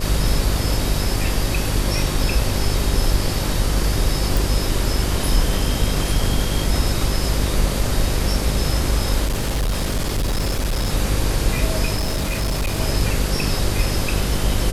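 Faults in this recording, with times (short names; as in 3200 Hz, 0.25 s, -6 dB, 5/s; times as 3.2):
buzz 50 Hz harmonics 12 -24 dBFS
4.37 pop
9.25–10.9 clipped -17 dBFS
11.95–12.8 clipped -17.5 dBFS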